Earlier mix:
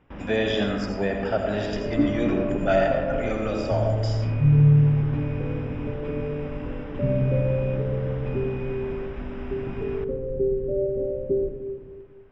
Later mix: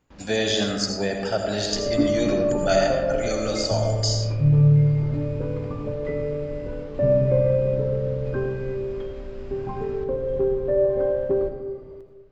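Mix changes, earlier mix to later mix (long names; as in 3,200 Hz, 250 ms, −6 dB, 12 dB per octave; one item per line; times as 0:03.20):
first sound −9.5 dB
second sound: remove inverse Chebyshev low-pass filter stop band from 1,600 Hz, stop band 60 dB
master: remove Savitzky-Golay smoothing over 25 samples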